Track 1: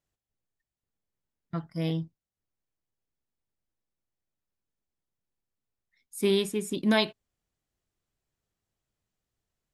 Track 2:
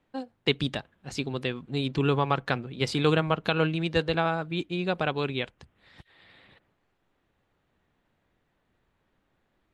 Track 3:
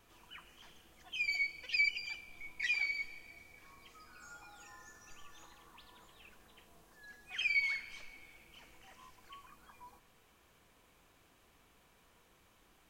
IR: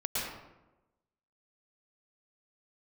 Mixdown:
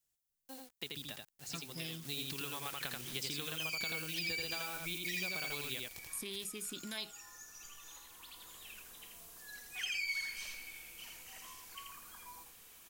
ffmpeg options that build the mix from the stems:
-filter_complex "[0:a]volume=-9.5dB,asplit=2[a][b];[1:a]acompressor=threshold=-26dB:ratio=6,acrusher=bits=7:mix=0:aa=0.000001,adelay=350,volume=-9.5dB,afade=t=in:st=1.85:d=0.25:silence=0.375837,asplit=2[c][d];[d]volume=-3.5dB[e];[2:a]adelay=2450,volume=-2dB,asplit=2[f][g];[g]volume=-4.5dB[h];[b]apad=whole_len=676758[i];[f][i]sidechaincompress=threshold=-48dB:ratio=8:attack=47:release=1220[j];[a][j]amix=inputs=2:normalize=0,alimiter=level_in=8.5dB:limit=-24dB:level=0:latency=1:release=280,volume=-8.5dB,volume=0dB[k];[e][h]amix=inputs=2:normalize=0,aecho=0:1:83:1[l];[c][k][l]amix=inputs=3:normalize=0,crystalizer=i=5.5:c=0,acrossover=split=1400|4600[m][n][o];[m]acompressor=threshold=-46dB:ratio=4[p];[n]acompressor=threshold=-42dB:ratio=4[q];[o]acompressor=threshold=-43dB:ratio=4[r];[p][q][r]amix=inputs=3:normalize=0"

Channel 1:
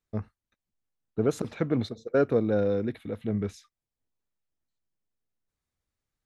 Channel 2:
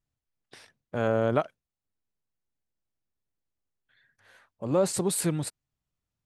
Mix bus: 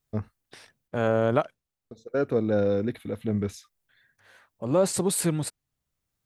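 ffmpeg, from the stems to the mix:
-filter_complex "[0:a]highshelf=f=8.3k:g=11.5,volume=2dB,asplit=3[a][b][c];[a]atrim=end=0.88,asetpts=PTS-STARTPTS,afade=t=out:st=0.876:d=0.004:c=hsin[d];[b]atrim=start=0.88:end=1.91,asetpts=PTS-STARTPTS,volume=0[e];[c]atrim=start=1.91,asetpts=PTS-STARTPTS,afade=t=in:d=0.004:c=hsin[f];[d][e][f]concat=n=3:v=0:a=1[g];[1:a]volume=2dB,asplit=2[h][i];[i]apad=whole_len=275729[j];[g][j]sidechaincompress=threshold=-37dB:ratio=3:attack=8.3:release=820[k];[k][h]amix=inputs=2:normalize=0"

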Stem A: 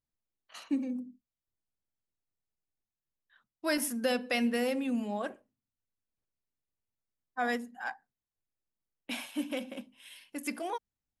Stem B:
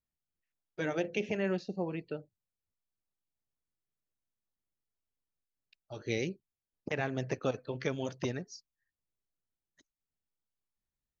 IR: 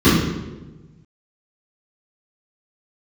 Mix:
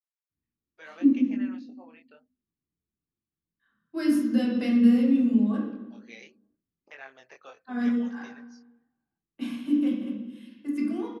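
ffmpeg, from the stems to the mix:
-filter_complex "[0:a]adynamicequalizer=threshold=0.00355:dfrequency=2700:dqfactor=0.7:tfrequency=2700:tqfactor=0.7:attack=5:release=100:ratio=0.375:range=4:mode=boostabove:tftype=highshelf,adelay=300,volume=-10dB,asplit=2[a][b];[b]volume=-18.5dB[c];[1:a]highpass=1k,flanger=delay=19.5:depth=6.3:speed=0.74,volume=-1.5dB,asplit=2[d][e];[e]apad=whole_len=507176[f];[a][f]sidechaincompress=threshold=-59dB:ratio=8:attack=16:release=191[g];[2:a]atrim=start_sample=2205[h];[c][h]afir=irnorm=-1:irlink=0[i];[g][d][i]amix=inputs=3:normalize=0,highshelf=f=3.7k:g=-11"

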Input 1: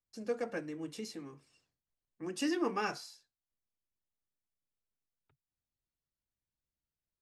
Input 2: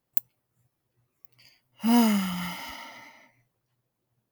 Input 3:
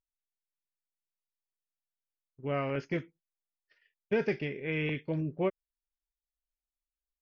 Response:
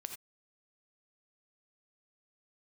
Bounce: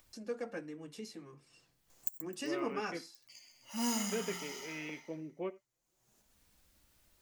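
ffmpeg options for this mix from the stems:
-filter_complex "[0:a]volume=0dB[a];[1:a]highpass=f=340:p=1,equalizer=f=6.8k:w=1.5:g=15,adelay=1900,volume=-10dB,asplit=3[b][c][d];[c]volume=-4.5dB[e];[d]volume=-8dB[f];[2:a]highpass=f=210:w=0.5412,highpass=f=210:w=1.3066,volume=-6.5dB,asplit=2[g][h];[h]volume=-10.5dB[i];[3:a]atrim=start_sample=2205[j];[e][i]amix=inputs=2:normalize=0[k];[k][j]afir=irnorm=-1:irlink=0[l];[f]aecho=0:1:129|258|387|516|645:1|0.34|0.116|0.0393|0.0134[m];[a][b][g][l][m]amix=inputs=5:normalize=0,acompressor=mode=upward:threshold=-42dB:ratio=2.5,flanger=delay=3.3:depth=2.7:regen=-53:speed=0.28:shape=sinusoidal"

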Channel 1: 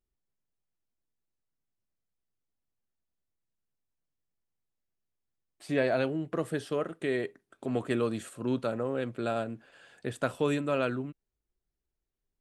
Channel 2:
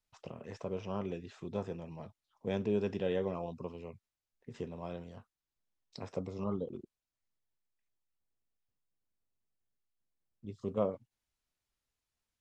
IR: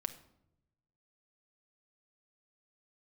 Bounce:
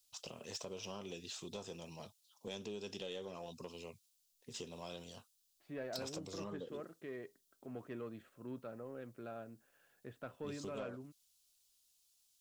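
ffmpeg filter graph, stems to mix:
-filter_complex "[0:a]lowpass=2.7k,volume=-15.5dB[a];[1:a]lowshelf=f=210:g=-8,acompressor=threshold=-40dB:ratio=5,aexciter=amount=7.7:drive=3.9:freq=2.9k,volume=-1.5dB[b];[a][b]amix=inputs=2:normalize=0,asoftclip=type=tanh:threshold=-34.5dB"

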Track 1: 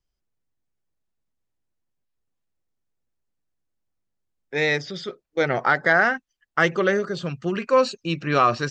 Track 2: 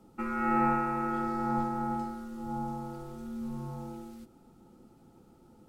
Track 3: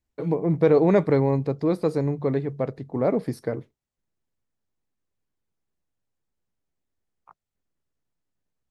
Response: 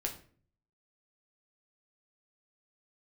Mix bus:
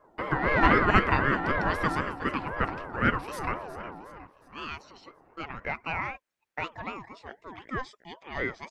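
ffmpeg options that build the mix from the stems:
-filter_complex "[0:a]volume=-18dB[a];[1:a]adynamicsmooth=sensitivity=1:basefreq=630,volume=1.5dB[b];[2:a]highpass=810,volume=2.5dB,asplit=3[c][d][e];[d]volume=-14dB[f];[e]volume=-12.5dB[g];[3:a]atrim=start_sample=2205[h];[f][h]afir=irnorm=-1:irlink=0[i];[g]aecho=0:1:363|726|1089|1452|1815|2178|2541:1|0.48|0.23|0.111|0.0531|0.0255|0.0122[j];[a][b][c][i][j]amix=inputs=5:normalize=0,equalizer=f=1.2k:w=0.63:g=8.5,aeval=exprs='val(0)*sin(2*PI*670*n/s+670*0.25/3.9*sin(2*PI*3.9*n/s))':c=same"

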